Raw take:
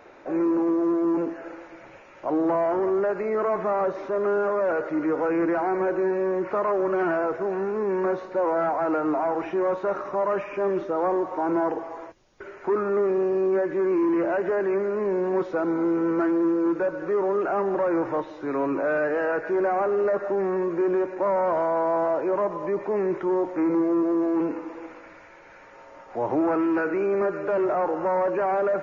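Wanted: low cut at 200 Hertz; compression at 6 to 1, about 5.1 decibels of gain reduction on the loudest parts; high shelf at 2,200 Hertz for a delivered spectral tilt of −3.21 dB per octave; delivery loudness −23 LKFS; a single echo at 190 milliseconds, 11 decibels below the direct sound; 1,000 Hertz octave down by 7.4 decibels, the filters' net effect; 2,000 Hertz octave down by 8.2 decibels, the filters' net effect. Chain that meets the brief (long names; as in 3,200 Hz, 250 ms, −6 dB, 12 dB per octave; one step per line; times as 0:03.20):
high-pass filter 200 Hz
parametric band 1,000 Hz −8 dB
parametric band 2,000 Hz −6 dB
high-shelf EQ 2,200 Hz −3.5 dB
downward compressor 6 to 1, threshold −27 dBFS
single-tap delay 190 ms −11 dB
level +7.5 dB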